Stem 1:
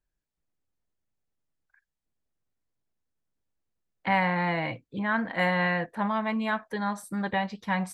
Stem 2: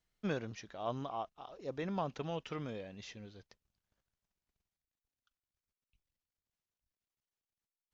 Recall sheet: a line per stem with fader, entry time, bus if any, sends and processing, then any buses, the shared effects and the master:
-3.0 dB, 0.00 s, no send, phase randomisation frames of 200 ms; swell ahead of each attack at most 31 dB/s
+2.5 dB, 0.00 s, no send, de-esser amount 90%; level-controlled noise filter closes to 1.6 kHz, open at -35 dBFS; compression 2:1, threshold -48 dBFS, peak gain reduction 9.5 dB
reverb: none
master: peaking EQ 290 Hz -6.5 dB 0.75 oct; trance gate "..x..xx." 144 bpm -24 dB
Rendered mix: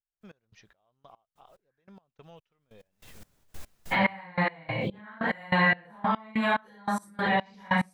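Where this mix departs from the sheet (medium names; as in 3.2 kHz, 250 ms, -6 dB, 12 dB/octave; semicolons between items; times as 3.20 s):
stem 1 -3.0 dB -> +4.0 dB; stem 2 +2.5 dB -> -3.5 dB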